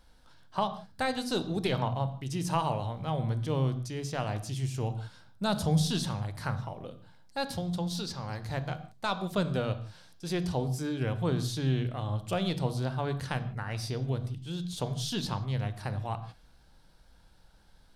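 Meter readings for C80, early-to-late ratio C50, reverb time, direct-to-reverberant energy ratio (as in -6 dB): 15.0 dB, 13.0 dB, no single decay rate, 10.0 dB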